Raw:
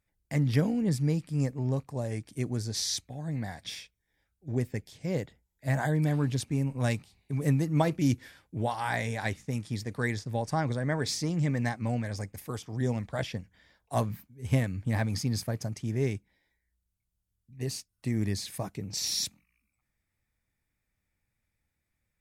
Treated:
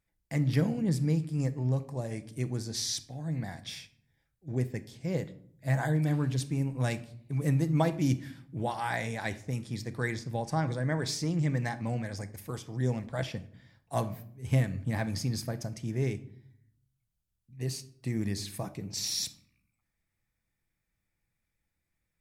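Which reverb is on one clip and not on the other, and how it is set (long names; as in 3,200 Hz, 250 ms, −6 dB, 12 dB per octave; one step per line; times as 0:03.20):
rectangular room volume 1,000 cubic metres, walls furnished, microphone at 0.72 metres
level −2 dB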